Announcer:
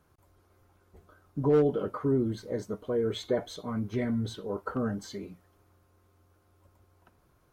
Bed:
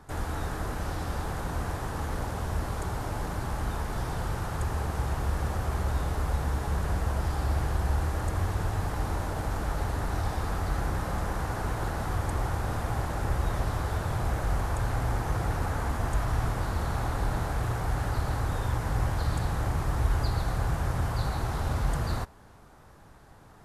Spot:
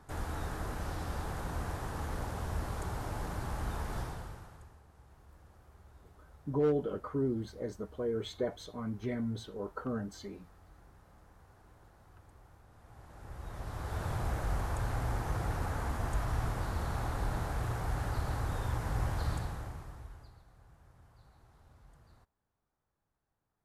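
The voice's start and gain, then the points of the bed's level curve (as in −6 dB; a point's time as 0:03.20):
5.10 s, −5.5 dB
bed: 0:03.99 −5.5 dB
0:04.82 −29.5 dB
0:12.70 −29.5 dB
0:14.04 −5.5 dB
0:19.31 −5.5 dB
0:20.46 −32 dB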